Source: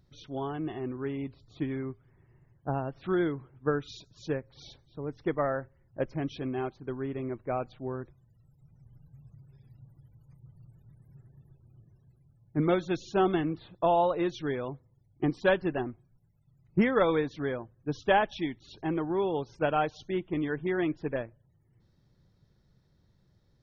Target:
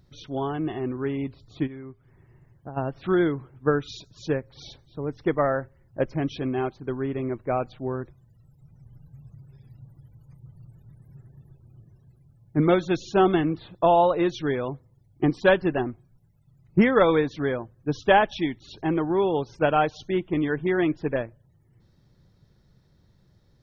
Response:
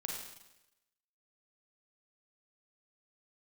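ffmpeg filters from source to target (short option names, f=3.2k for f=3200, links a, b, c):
-filter_complex "[0:a]asplit=3[a][b][c];[a]afade=t=out:st=1.66:d=0.02[d];[b]acompressor=threshold=-45dB:ratio=4,afade=t=in:st=1.66:d=0.02,afade=t=out:st=2.76:d=0.02[e];[c]afade=t=in:st=2.76:d=0.02[f];[d][e][f]amix=inputs=3:normalize=0,volume=6dB"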